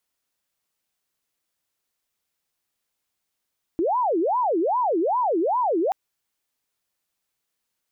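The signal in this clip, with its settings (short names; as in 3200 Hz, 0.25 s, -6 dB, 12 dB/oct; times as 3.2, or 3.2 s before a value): siren wail 319–1010 Hz 2.5/s sine -19 dBFS 2.13 s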